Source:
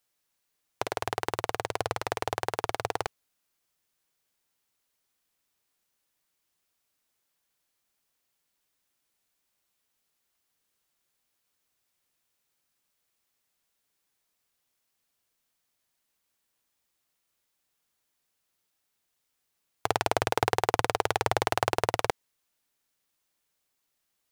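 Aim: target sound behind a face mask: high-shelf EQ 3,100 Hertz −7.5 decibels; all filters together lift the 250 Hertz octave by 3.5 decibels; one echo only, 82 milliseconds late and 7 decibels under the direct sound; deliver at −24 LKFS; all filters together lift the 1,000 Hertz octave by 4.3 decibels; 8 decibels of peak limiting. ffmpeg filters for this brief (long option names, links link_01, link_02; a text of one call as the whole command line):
ffmpeg -i in.wav -af "equalizer=frequency=250:width_type=o:gain=5,equalizer=frequency=1000:width_type=o:gain=6,alimiter=limit=-10.5dB:level=0:latency=1,highshelf=frequency=3100:gain=-7.5,aecho=1:1:82:0.447,volume=7dB" out.wav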